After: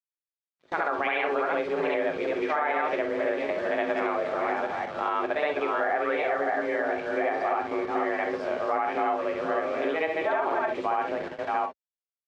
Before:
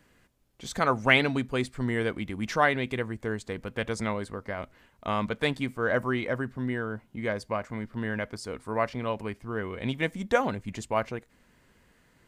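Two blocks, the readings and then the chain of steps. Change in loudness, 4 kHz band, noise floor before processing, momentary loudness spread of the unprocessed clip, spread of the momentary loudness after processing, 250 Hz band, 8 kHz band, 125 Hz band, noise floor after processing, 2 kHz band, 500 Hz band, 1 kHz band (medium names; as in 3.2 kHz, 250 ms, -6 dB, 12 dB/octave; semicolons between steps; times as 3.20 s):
+2.0 dB, -6.5 dB, -64 dBFS, 12 LU, 3 LU, -3.0 dB, under -10 dB, -18.0 dB, under -85 dBFS, 0.0 dB, +4.5 dB, +5.5 dB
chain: chunks repeated in reverse 389 ms, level -4.5 dB; tone controls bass -13 dB, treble -11 dB; reverse echo 70 ms -5 dB; in parallel at -0.5 dB: gain riding within 4 dB 2 s; on the sum: frequency shift +150 Hz; word length cut 6-bit, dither none; high-pass 72 Hz 24 dB/octave; tape spacing loss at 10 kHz 35 dB; gated-style reverb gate 80 ms flat, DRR 5 dB; gate with hold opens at -30 dBFS; peak limiter -16 dBFS, peak gain reduction 10 dB; compression 2.5:1, threshold -29 dBFS, peak gain reduction 6 dB; trim +4 dB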